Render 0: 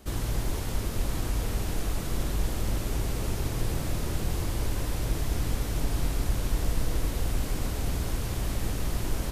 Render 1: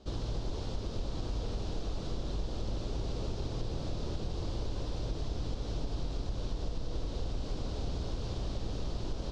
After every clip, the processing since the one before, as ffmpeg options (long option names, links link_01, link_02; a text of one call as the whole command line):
ffmpeg -i in.wav -af "equalizer=frequency=500:width_type=o:width=1:gain=4,equalizer=frequency=2000:width_type=o:width=1:gain=-11,equalizer=frequency=4000:width_type=o:width=1:gain=5,acompressor=threshold=-25dB:ratio=6,lowpass=frequency=5500:width=0.5412,lowpass=frequency=5500:width=1.3066,volume=-4.5dB" out.wav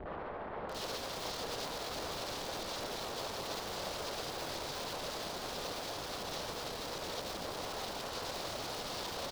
ffmpeg -i in.wav -filter_complex "[0:a]alimiter=level_in=10.5dB:limit=-24dB:level=0:latency=1:release=53,volume=-10.5dB,acrossover=split=500[link_01][link_02];[link_01]aeval=exprs='(mod(376*val(0)+1,2)-1)/376':channel_layout=same[link_03];[link_03][link_02]amix=inputs=2:normalize=0,acrossover=split=1900[link_04][link_05];[link_05]adelay=690[link_06];[link_04][link_06]amix=inputs=2:normalize=0,volume=12.5dB" out.wav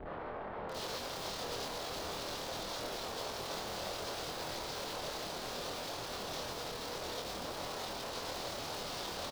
ffmpeg -i in.wav -filter_complex "[0:a]asplit=2[link_01][link_02];[link_02]adelay=25,volume=-3.5dB[link_03];[link_01][link_03]amix=inputs=2:normalize=0,volume=-2dB" out.wav